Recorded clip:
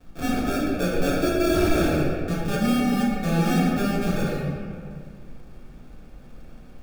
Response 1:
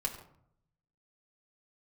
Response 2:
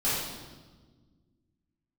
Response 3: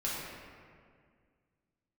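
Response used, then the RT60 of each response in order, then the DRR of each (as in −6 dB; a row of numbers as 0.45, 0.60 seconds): 3; 0.70, 1.4, 2.0 seconds; −1.0, −12.5, −7.0 decibels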